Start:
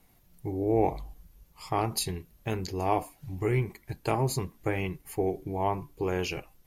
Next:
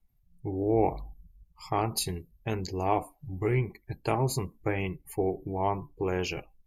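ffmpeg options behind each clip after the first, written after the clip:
-af "afftdn=nr=23:nf=-50"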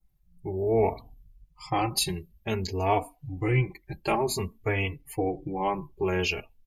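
-filter_complex "[0:a]adynamicequalizer=threshold=0.00282:dfrequency=3100:dqfactor=1.1:tfrequency=3100:tqfactor=1.1:attack=5:release=100:ratio=0.375:range=3.5:mode=boostabove:tftype=bell,asplit=2[a][b];[b]adelay=3.4,afreqshift=0.54[c];[a][c]amix=inputs=2:normalize=1,volume=4.5dB"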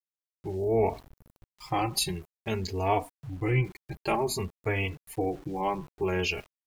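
-af "aeval=exprs='val(0)*gte(abs(val(0)),0.00447)':c=same,volume=-1.5dB"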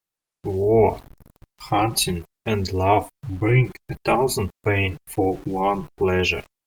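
-af "volume=8.5dB" -ar 48000 -c:a libopus -b:a 32k

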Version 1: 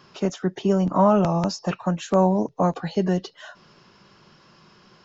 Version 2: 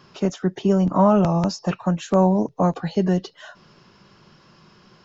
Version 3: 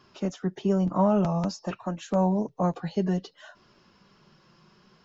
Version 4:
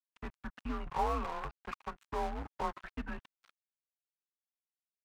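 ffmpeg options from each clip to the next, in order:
-af "lowshelf=f=240:g=4.5"
-af "flanger=delay=2.8:depth=3.1:regen=-49:speed=0.55:shape=triangular,volume=-3dB"
-af "highpass=f=200:t=q:w=0.5412,highpass=f=200:t=q:w=1.307,lowpass=f=2.8k:t=q:w=0.5176,lowpass=f=2.8k:t=q:w=0.7071,lowpass=f=2.8k:t=q:w=1.932,afreqshift=-150,aeval=exprs='sgn(val(0))*max(abs(val(0))-0.00891,0)':c=same,lowshelf=f=750:t=q:w=1.5:g=-10.5"

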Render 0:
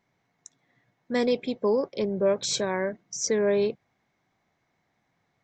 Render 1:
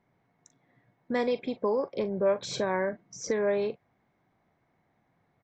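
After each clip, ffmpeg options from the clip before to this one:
-filter_complex "[0:a]lowpass=f=1.1k:p=1,acrossover=split=650[a][b];[a]acompressor=threshold=-34dB:ratio=6[c];[b]asplit=2[d][e];[e]adelay=41,volume=-12dB[f];[d][f]amix=inputs=2:normalize=0[g];[c][g]amix=inputs=2:normalize=0,volume=4dB"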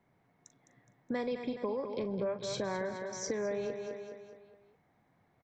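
-filter_complex "[0:a]asplit=2[a][b];[b]aecho=0:1:209|418|627|836|1045:0.316|0.145|0.0669|0.0308|0.0142[c];[a][c]amix=inputs=2:normalize=0,acrossover=split=150[d][e];[e]acompressor=threshold=-35dB:ratio=3[f];[d][f]amix=inputs=2:normalize=0"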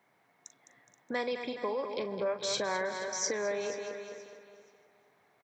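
-af "highpass=f=930:p=1,aecho=1:1:478|956|1434:0.168|0.042|0.0105,volume=8dB"

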